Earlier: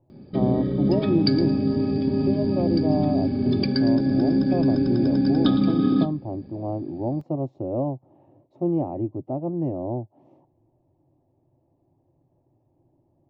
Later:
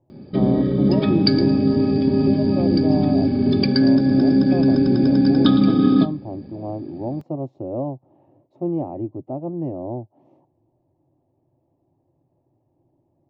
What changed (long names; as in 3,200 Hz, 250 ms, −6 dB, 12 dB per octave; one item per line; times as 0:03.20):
background +5.5 dB
master: add low-shelf EQ 79 Hz −5.5 dB